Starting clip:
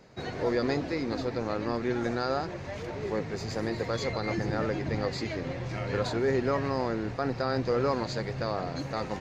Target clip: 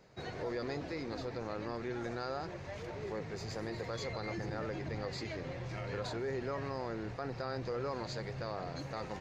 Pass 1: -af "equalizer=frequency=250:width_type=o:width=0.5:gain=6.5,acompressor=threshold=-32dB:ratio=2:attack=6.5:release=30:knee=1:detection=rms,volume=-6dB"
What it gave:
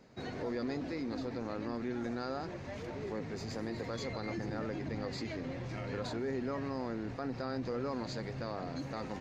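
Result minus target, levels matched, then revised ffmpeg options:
250 Hz band +4.0 dB
-af "equalizer=frequency=250:width_type=o:width=0.5:gain=-5,acompressor=threshold=-32dB:ratio=2:attack=6.5:release=30:knee=1:detection=rms,volume=-6dB"

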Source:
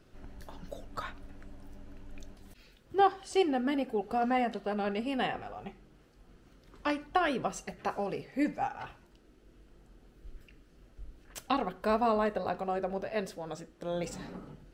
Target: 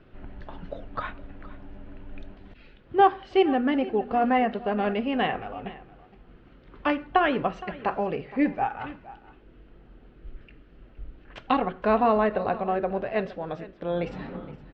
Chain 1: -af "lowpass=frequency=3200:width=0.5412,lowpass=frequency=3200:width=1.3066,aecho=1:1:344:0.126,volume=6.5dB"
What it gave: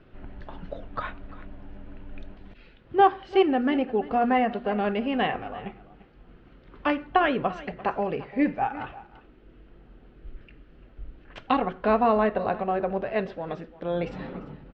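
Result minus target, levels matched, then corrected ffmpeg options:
echo 122 ms early
-af "lowpass=frequency=3200:width=0.5412,lowpass=frequency=3200:width=1.3066,aecho=1:1:466:0.126,volume=6.5dB"

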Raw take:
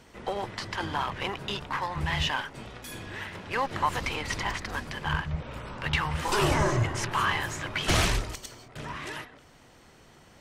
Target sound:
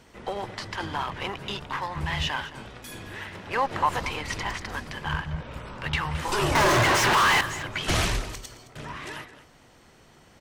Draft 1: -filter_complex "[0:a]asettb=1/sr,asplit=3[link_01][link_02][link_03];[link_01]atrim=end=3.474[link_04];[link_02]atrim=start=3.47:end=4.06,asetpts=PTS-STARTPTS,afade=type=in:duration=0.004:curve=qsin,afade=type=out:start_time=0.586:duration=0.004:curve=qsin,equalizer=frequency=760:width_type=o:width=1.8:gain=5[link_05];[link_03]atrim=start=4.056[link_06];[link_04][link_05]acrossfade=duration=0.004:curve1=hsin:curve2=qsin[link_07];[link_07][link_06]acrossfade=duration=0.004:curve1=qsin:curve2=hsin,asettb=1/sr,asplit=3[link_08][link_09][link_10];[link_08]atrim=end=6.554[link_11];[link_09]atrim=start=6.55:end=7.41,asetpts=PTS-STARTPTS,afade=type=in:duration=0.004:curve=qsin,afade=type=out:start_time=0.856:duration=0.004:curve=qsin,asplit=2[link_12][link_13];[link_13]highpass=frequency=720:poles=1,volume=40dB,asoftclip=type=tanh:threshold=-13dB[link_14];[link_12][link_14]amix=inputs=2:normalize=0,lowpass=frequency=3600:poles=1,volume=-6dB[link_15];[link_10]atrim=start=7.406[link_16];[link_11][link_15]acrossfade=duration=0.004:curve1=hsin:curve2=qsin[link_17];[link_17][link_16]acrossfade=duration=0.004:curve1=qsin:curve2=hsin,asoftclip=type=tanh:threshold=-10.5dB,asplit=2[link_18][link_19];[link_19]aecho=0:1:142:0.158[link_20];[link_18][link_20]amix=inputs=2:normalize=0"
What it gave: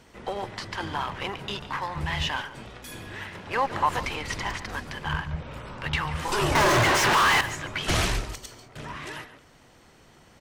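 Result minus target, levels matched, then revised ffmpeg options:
echo 74 ms early
-filter_complex "[0:a]asettb=1/sr,asplit=3[link_01][link_02][link_03];[link_01]atrim=end=3.474[link_04];[link_02]atrim=start=3.47:end=4.06,asetpts=PTS-STARTPTS,afade=type=in:duration=0.004:curve=qsin,afade=type=out:start_time=0.586:duration=0.004:curve=qsin,equalizer=frequency=760:width_type=o:width=1.8:gain=5[link_05];[link_03]atrim=start=4.056[link_06];[link_04][link_05]acrossfade=duration=0.004:curve1=hsin:curve2=qsin[link_07];[link_07][link_06]acrossfade=duration=0.004:curve1=qsin:curve2=hsin,asettb=1/sr,asplit=3[link_08][link_09][link_10];[link_08]atrim=end=6.554[link_11];[link_09]atrim=start=6.55:end=7.41,asetpts=PTS-STARTPTS,afade=type=in:duration=0.004:curve=qsin,afade=type=out:start_time=0.856:duration=0.004:curve=qsin,asplit=2[link_12][link_13];[link_13]highpass=frequency=720:poles=1,volume=40dB,asoftclip=type=tanh:threshold=-13dB[link_14];[link_12][link_14]amix=inputs=2:normalize=0,lowpass=frequency=3600:poles=1,volume=-6dB[link_15];[link_10]atrim=start=7.406[link_16];[link_11][link_15]acrossfade=duration=0.004:curve1=hsin:curve2=qsin[link_17];[link_17][link_16]acrossfade=duration=0.004:curve1=qsin:curve2=hsin,asoftclip=type=tanh:threshold=-10.5dB,asplit=2[link_18][link_19];[link_19]aecho=0:1:216:0.158[link_20];[link_18][link_20]amix=inputs=2:normalize=0"

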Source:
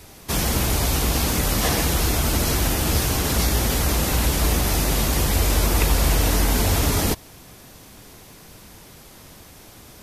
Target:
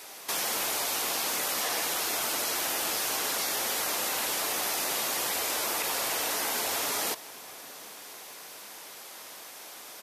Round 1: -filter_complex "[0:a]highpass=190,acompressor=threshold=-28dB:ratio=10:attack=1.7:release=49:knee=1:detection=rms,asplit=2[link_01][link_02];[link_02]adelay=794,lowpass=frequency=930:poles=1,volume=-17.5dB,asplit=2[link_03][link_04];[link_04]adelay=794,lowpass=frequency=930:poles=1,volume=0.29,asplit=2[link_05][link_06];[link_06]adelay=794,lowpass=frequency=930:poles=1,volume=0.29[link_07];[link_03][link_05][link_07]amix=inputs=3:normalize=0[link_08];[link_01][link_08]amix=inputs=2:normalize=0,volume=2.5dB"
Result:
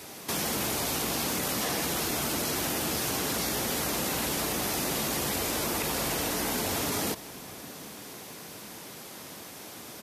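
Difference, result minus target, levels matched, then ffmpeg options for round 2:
250 Hz band +11.5 dB
-filter_complex "[0:a]highpass=590,acompressor=threshold=-28dB:ratio=10:attack=1.7:release=49:knee=1:detection=rms,asplit=2[link_01][link_02];[link_02]adelay=794,lowpass=frequency=930:poles=1,volume=-17.5dB,asplit=2[link_03][link_04];[link_04]adelay=794,lowpass=frequency=930:poles=1,volume=0.29,asplit=2[link_05][link_06];[link_06]adelay=794,lowpass=frequency=930:poles=1,volume=0.29[link_07];[link_03][link_05][link_07]amix=inputs=3:normalize=0[link_08];[link_01][link_08]amix=inputs=2:normalize=0,volume=2.5dB"

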